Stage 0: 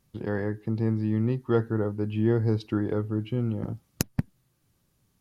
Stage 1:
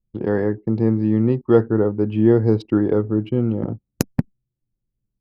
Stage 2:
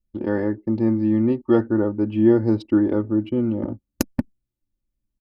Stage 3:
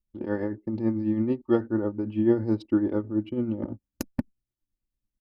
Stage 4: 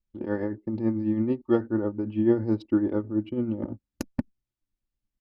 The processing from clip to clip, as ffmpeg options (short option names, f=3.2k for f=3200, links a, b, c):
-af "anlmdn=0.0398,equalizer=f=400:w=0.42:g=8.5,volume=2dB"
-af "aecho=1:1:3.4:0.71,volume=-3dB"
-af "tremolo=f=9.1:d=0.53,volume=-4dB"
-af "adynamicsmooth=sensitivity=6:basefreq=7.1k"